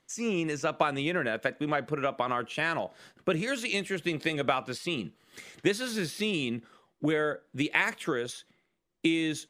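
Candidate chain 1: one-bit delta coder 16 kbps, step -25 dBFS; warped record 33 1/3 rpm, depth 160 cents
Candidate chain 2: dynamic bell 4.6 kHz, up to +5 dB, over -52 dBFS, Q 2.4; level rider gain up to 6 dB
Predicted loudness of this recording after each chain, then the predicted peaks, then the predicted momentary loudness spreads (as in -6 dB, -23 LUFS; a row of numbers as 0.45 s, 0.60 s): -29.0 LUFS, -24.5 LUFS; -10.0 dBFS, -3.5 dBFS; 3 LU, 7 LU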